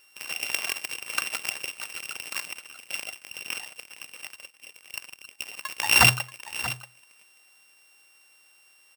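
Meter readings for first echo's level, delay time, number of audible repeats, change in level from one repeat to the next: -14.0 dB, 0.633 s, 1, no steady repeat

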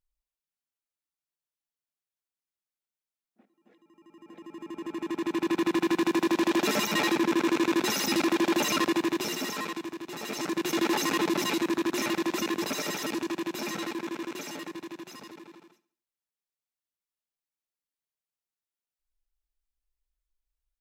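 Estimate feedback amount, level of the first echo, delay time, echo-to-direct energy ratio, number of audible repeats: 48%, -18.5 dB, 69 ms, -17.5 dB, 3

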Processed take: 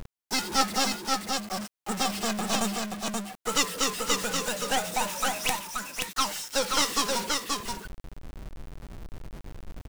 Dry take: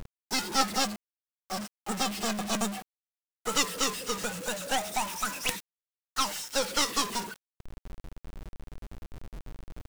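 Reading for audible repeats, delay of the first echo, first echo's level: 1, 0.529 s, -3.5 dB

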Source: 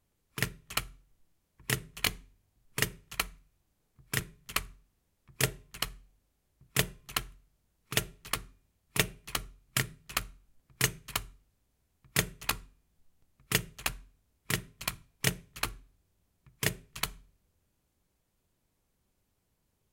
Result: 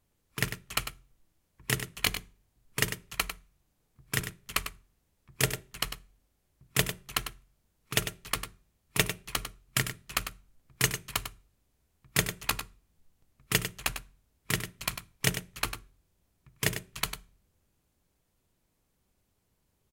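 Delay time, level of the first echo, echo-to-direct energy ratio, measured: 99 ms, -9.5 dB, -9.5 dB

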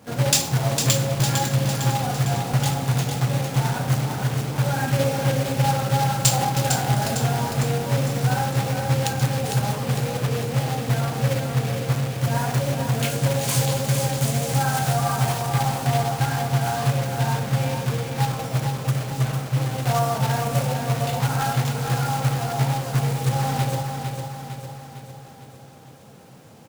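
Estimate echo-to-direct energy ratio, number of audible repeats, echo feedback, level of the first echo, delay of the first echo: -4.5 dB, 6, 54%, -6.0 dB, 0.454 s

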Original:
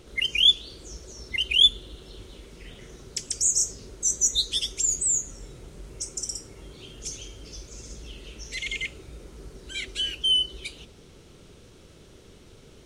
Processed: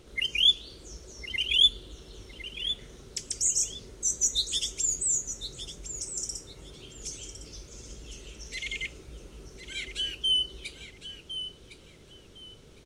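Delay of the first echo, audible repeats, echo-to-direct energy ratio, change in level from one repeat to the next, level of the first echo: 1.058 s, 2, -11.0 dB, -13.0 dB, -11.0 dB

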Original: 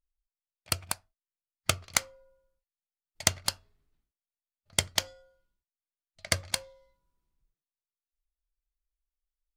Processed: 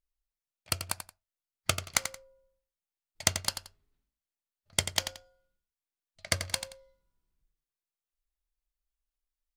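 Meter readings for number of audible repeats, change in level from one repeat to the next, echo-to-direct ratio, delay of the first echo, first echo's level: 2, -12.0 dB, -9.0 dB, 88 ms, -9.5 dB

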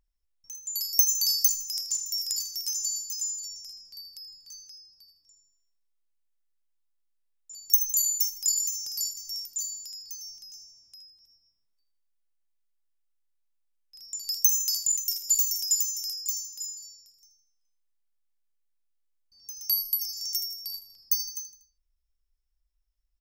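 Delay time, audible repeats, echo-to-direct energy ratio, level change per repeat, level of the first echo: 80 ms, 3, -13.0 dB, -6.5 dB, -14.0 dB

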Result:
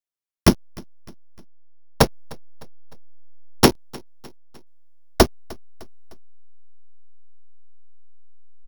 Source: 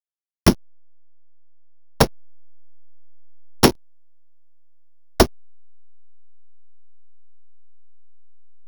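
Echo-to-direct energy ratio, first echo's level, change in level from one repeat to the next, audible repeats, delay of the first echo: -23.0 dB, -24.0 dB, -6.0 dB, 2, 0.304 s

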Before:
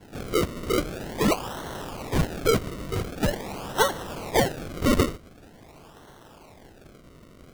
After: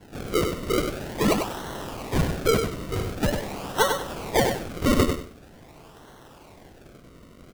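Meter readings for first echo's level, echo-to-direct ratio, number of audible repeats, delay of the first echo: -6.0 dB, -6.0 dB, 3, 97 ms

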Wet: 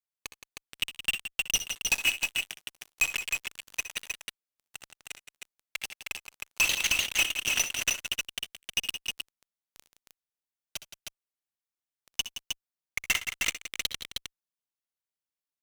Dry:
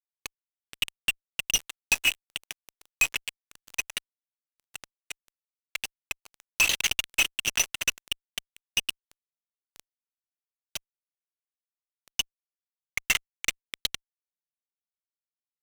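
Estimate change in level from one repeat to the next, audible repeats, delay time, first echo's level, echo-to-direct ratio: no steady repeat, 3, 64 ms, -13.0 dB, -3.0 dB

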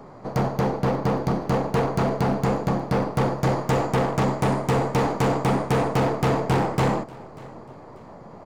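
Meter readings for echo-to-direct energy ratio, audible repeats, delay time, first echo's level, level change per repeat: -21.5 dB, 2, 0.59 s, -22.0 dB, -9.0 dB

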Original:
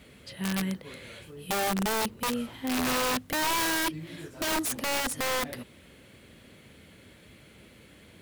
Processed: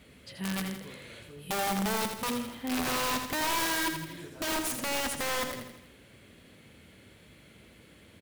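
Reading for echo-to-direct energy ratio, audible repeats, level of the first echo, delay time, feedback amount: -5.5 dB, 5, -7.0 dB, 82 ms, 51%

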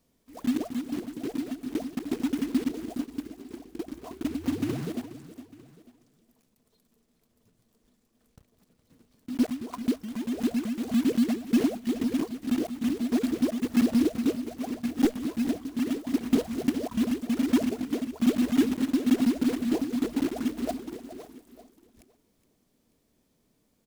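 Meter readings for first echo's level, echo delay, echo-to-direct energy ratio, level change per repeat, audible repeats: -15.0 dB, 0.416 s, -14.0 dB, no steady repeat, 2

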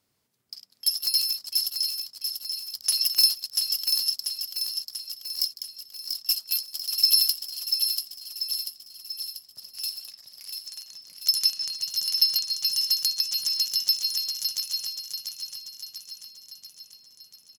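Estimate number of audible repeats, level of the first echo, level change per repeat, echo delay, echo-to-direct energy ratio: 5, -5.5 dB, -5.0 dB, 0.689 s, -4.0 dB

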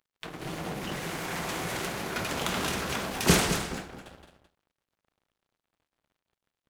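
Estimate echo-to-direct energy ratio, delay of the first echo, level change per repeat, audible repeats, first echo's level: -10.0 dB, 0.215 s, no steady repeat, 1, -10.0 dB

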